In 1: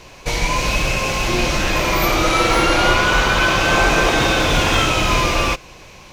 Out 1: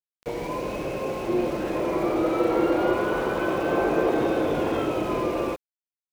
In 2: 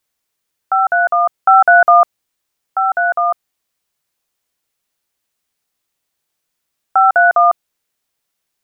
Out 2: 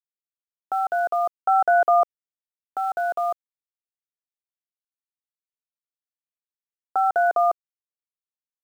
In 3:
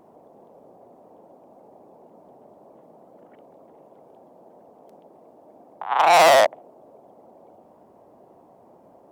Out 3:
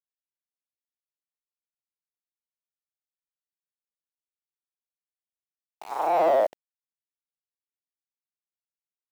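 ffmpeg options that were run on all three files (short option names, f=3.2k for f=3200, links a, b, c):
-af "agate=range=-33dB:threshold=-40dB:ratio=3:detection=peak,bandpass=f=390:t=q:w=1.6:csg=0,aeval=exprs='val(0)*gte(abs(val(0)),0.0112)':c=same"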